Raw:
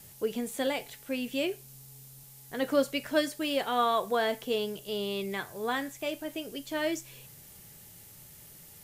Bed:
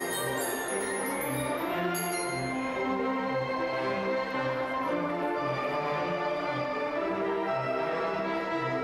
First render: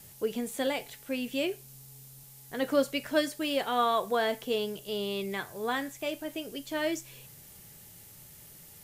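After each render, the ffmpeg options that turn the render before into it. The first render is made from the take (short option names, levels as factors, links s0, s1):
-af anull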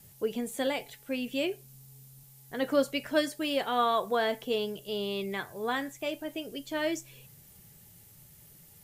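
-af "afftdn=nr=6:nf=-52"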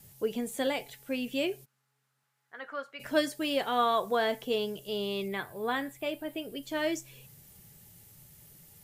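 -filter_complex "[0:a]asplit=3[s0][s1][s2];[s0]afade=t=out:st=1.64:d=0.02[s3];[s1]bandpass=f=1400:t=q:w=2.4,afade=t=in:st=1.64:d=0.02,afade=t=out:st=2.99:d=0.02[s4];[s2]afade=t=in:st=2.99:d=0.02[s5];[s3][s4][s5]amix=inputs=3:normalize=0,asettb=1/sr,asplit=3[s6][s7][s8];[s6]atrim=end=5.284[s9];[s7]atrim=start=5.28:end=6.63,asetpts=PTS-STARTPTS,afade=t=in:d=0.004:c=qsin,afade=t=out:st=1.346:d=0.004:c=qsin,equalizer=f=6200:w=2.4:g=-11[s10];[s8]atrim=start=6.626[s11];[s9][s10]acrossfade=d=0.004:c1=hsin:c2=qsin[s12];[s12][s11]acrossfade=d=0.004:c1=qsin:c2=hsin"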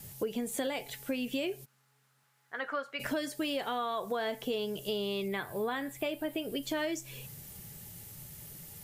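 -filter_complex "[0:a]asplit=2[s0][s1];[s1]alimiter=limit=0.0708:level=0:latency=1:release=27,volume=1.26[s2];[s0][s2]amix=inputs=2:normalize=0,acompressor=threshold=0.0282:ratio=6"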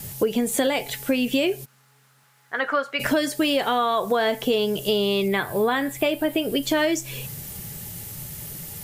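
-af "volume=3.98"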